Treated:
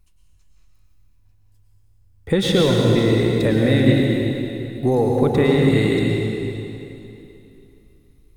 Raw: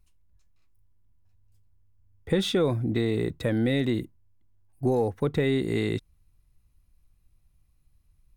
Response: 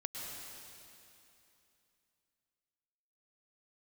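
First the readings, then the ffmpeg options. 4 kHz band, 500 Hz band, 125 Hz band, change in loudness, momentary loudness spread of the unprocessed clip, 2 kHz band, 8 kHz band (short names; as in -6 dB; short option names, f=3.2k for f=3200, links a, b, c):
+9.5 dB, +9.0 dB, +10.5 dB, +8.5 dB, 6 LU, +9.5 dB, +9.5 dB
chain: -filter_complex "[1:a]atrim=start_sample=2205[a];[0:a][a]afir=irnorm=-1:irlink=0,volume=9dB"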